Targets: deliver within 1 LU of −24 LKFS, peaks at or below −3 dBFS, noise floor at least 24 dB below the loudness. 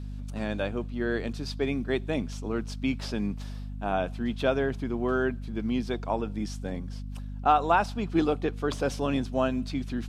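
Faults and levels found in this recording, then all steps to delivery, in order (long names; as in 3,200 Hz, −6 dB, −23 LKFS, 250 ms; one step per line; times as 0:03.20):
mains hum 50 Hz; hum harmonics up to 250 Hz; level of the hum −34 dBFS; integrated loudness −29.5 LKFS; sample peak −9.0 dBFS; target loudness −24.0 LKFS
→ mains-hum notches 50/100/150/200/250 Hz
level +5.5 dB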